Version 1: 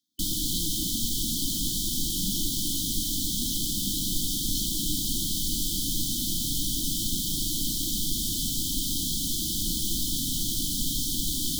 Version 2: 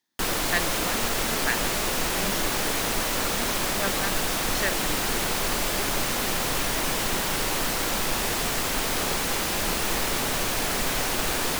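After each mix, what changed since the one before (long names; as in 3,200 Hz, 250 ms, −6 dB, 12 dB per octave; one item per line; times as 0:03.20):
master: remove linear-phase brick-wall band-stop 340–3,000 Hz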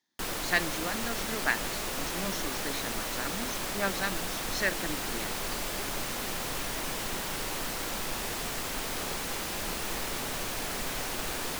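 background −8.0 dB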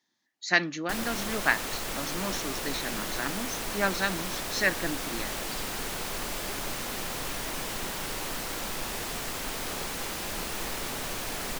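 speech +4.0 dB
background: entry +0.70 s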